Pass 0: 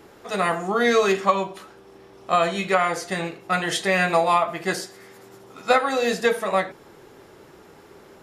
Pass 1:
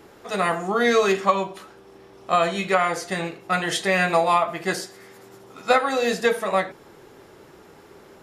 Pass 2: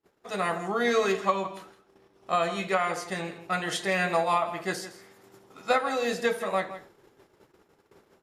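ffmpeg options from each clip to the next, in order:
ffmpeg -i in.wav -af anull out.wav
ffmpeg -i in.wav -filter_complex "[0:a]agate=range=-31dB:threshold=-46dB:ratio=16:detection=peak,asplit=2[link_01][link_02];[link_02]adelay=163.3,volume=-13dB,highshelf=frequency=4000:gain=-3.67[link_03];[link_01][link_03]amix=inputs=2:normalize=0,volume=-6dB" out.wav

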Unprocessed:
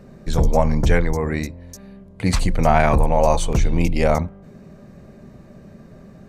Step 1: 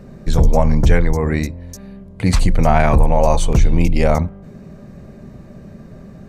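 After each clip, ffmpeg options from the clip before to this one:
ffmpeg -i in.wav -filter_complex "[0:a]lowshelf=frequency=200:gain=4.5,asplit=2[link_01][link_02];[link_02]alimiter=limit=-11dB:level=0:latency=1:release=180,volume=-2dB[link_03];[link_01][link_03]amix=inputs=2:normalize=0,volume=-2dB" out.wav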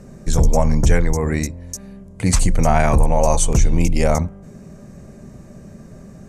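ffmpeg -i in.wav -af "lowpass=8000,aexciter=amount=7.3:drive=1.5:freq=5800,volume=-2dB" out.wav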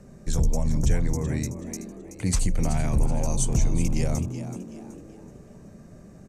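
ffmpeg -i in.wav -filter_complex "[0:a]acrossover=split=350|3000[link_01][link_02][link_03];[link_02]acompressor=threshold=-33dB:ratio=2.5[link_04];[link_01][link_04][link_03]amix=inputs=3:normalize=0,asplit=2[link_05][link_06];[link_06]asplit=4[link_07][link_08][link_09][link_10];[link_07]adelay=377,afreqshift=100,volume=-11.5dB[link_11];[link_08]adelay=754,afreqshift=200,volume=-19.9dB[link_12];[link_09]adelay=1131,afreqshift=300,volume=-28.3dB[link_13];[link_10]adelay=1508,afreqshift=400,volume=-36.7dB[link_14];[link_11][link_12][link_13][link_14]amix=inputs=4:normalize=0[link_15];[link_05][link_15]amix=inputs=2:normalize=0,volume=-7.5dB" out.wav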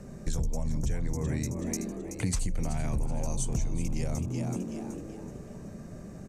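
ffmpeg -i in.wav -af "acompressor=threshold=-30dB:ratio=6,volume=3.5dB" out.wav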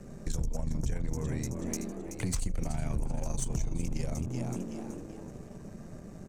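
ffmpeg -i in.wav -af "aeval=exprs='if(lt(val(0),0),0.447*val(0),val(0))':channel_layout=same" out.wav

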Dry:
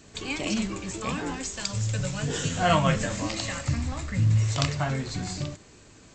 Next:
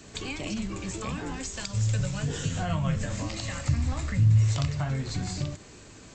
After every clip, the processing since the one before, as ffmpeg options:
ffmpeg -i in.wav -filter_complex "[0:a]acrossover=split=140[link_01][link_02];[link_02]acompressor=threshold=-37dB:ratio=5[link_03];[link_01][link_03]amix=inputs=2:normalize=0,volume=3.5dB" out.wav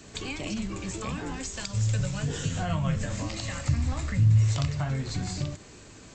ffmpeg -i in.wav -af anull out.wav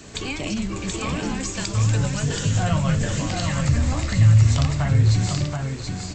ffmpeg -i in.wav -af "aecho=1:1:728:0.631,volume=6dB" out.wav

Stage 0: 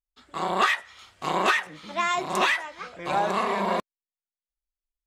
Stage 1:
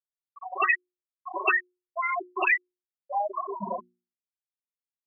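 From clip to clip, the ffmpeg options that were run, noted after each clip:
ffmpeg -i in.wav -af "afftfilt=real='re*gte(hypot(re,im),0.282)':imag='im*gte(hypot(re,im),0.282)':win_size=1024:overlap=0.75,highshelf=frequency=2000:width_type=q:width=1.5:gain=10,bandreject=frequency=60:width_type=h:width=6,bandreject=frequency=120:width_type=h:width=6,bandreject=frequency=180:width_type=h:width=6,bandreject=frequency=240:width_type=h:width=6,bandreject=frequency=300:width_type=h:width=6,bandreject=frequency=360:width_type=h:width=6" out.wav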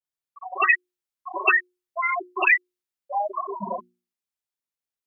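ffmpeg -i in.wav -af "adynamicequalizer=threshold=0.0178:dfrequency=1500:dqfactor=0.7:tfrequency=1500:tqfactor=0.7:attack=5:release=100:ratio=0.375:range=2:mode=boostabove:tftype=highshelf,volume=2dB" out.wav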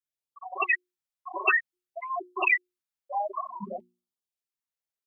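ffmpeg -i in.wav -af "afftfilt=real='re*(1-between(b*sr/1024,210*pow(2100/210,0.5+0.5*sin(2*PI*0.55*pts/sr))/1.41,210*pow(2100/210,0.5+0.5*sin(2*PI*0.55*pts/sr))*1.41))':imag='im*(1-between(b*sr/1024,210*pow(2100/210,0.5+0.5*sin(2*PI*0.55*pts/sr))/1.41,210*pow(2100/210,0.5+0.5*sin(2*PI*0.55*pts/sr))*1.41))':win_size=1024:overlap=0.75,volume=-4dB" out.wav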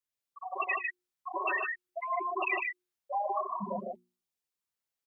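ffmpeg -i in.wav -filter_complex "[0:a]alimiter=limit=-18dB:level=0:latency=1:release=225,acompressor=threshold=-29dB:ratio=4,asplit=2[link_01][link_02];[link_02]aecho=0:1:107.9|151.6:0.282|0.708[link_03];[link_01][link_03]amix=inputs=2:normalize=0" out.wav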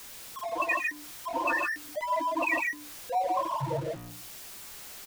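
ffmpeg -i in.wav -filter_complex "[0:a]aeval=exprs='val(0)+0.5*0.0112*sgn(val(0))':channel_layout=same,afreqshift=-63,asplit=2[link_01][link_02];[link_02]adelay=15,volume=-13dB[link_03];[link_01][link_03]amix=inputs=2:normalize=0,volume=2dB" out.wav

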